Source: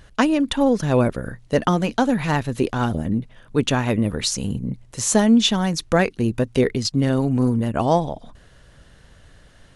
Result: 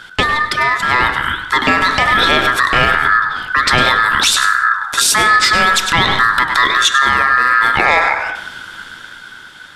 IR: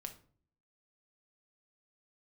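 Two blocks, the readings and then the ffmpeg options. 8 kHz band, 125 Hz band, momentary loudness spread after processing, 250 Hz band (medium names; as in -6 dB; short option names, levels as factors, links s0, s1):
+8.5 dB, -5.0 dB, 6 LU, -8.0 dB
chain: -filter_complex "[0:a]aeval=exprs='val(0)*sin(2*PI*1500*n/s)':c=same,bandreject=f=55.09:t=h:w=4,bandreject=f=110.18:t=h:w=4,bandreject=f=165.27:t=h:w=4,bandreject=f=220.36:t=h:w=4,bandreject=f=275.45:t=h:w=4,bandreject=f=330.54:t=h:w=4,bandreject=f=385.63:t=h:w=4,bandreject=f=440.72:t=h:w=4,bandreject=f=495.81:t=h:w=4,bandreject=f=550.9:t=h:w=4,bandreject=f=605.99:t=h:w=4,bandreject=f=661.08:t=h:w=4,bandreject=f=716.17:t=h:w=4,bandreject=f=771.26:t=h:w=4,bandreject=f=826.35:t=h:w=4,flanger=delay=7.3:depth=7.1:regen=84:speed=1.3:shape=sinusoidal,asoftclip=type=tanh:threshold=0.178,asplit=2[s0][s1];[1:a]atrim=start_sample=2205,asetrate=22491,aresample=44100,adelay=99[s2];[s1][s2]afir=irnorm=-1:irlink=0,volume=0.266[s3];[s0][s3]amix=inputs=2:normalize=0,acrossover=split=490[s4][s5];[s5]acompressor=threshold=0.0141:ratio=2[s6];[s4][s6]amix=inputs=2:normalize=0,equalizer=f=3600:w=6:g=13,dynaudnorm=f=300:g=9:m=2.51,alimiter=level_in=8.91:limit=0.891:release=50:level=0:latency=1,volume=0.891"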